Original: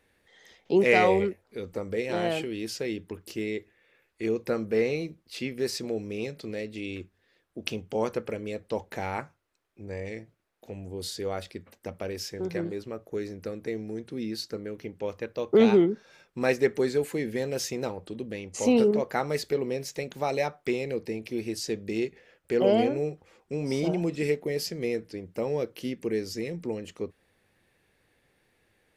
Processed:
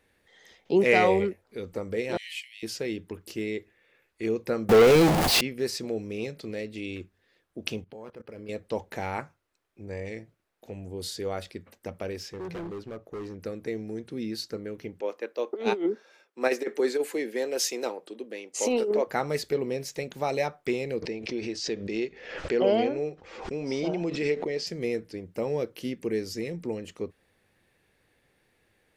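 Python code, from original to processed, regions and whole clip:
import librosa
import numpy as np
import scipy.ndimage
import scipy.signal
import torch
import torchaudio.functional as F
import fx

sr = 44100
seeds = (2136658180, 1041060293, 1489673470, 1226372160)

y = fx.chain(x, sr, fx.steep_highpass(hz=1900.0, slope=96),
    fx.band_widen(depth_pct=40), at=(2.17, 2.63))
y = fx.chain(y, sr, fx.zero_step(step_db=-30.5),
    fx.peak_eq(hz=740.0, db=10.0, octaves=0.83),
    fx.leveller(passes=3), at=(4.69, 5.41))
y = fx.chain(y, sr, fx.level_steps(step_db=21),
    fx.resample_linear(factor=6), at=(7.84, 8.49))
y = fx.chain(y, sr, fx.high_shelf(hz=6400.0, db=-11.0),
    fx.clip_hard(threshold_db=-33.5), at=(12.17, 13.4))
y = fx.chain(y, sr, fx.highpass(hz=290.0, slope=24),
    fx.over_compress(threshold_db=-24.0, ratio=-0.5),
    fx.band_widen(depth_pct=40), at=(15.01, 19.07))
y = fx.chain(y, sr, fx.lowpass(hz=6200.0, slope=24),
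    fx.peak_eq(hz=120.0, db=-8.0, octaves=1.6),
    fx.pre_swell(db_per_s=68.0), at=(21.02, 24.67))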